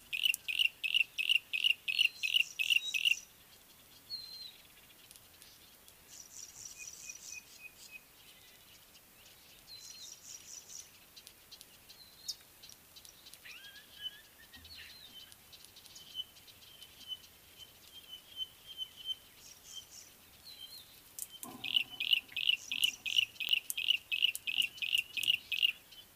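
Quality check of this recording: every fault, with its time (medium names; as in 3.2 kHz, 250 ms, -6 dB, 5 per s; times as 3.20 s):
23.49 s: pop -17 dBFS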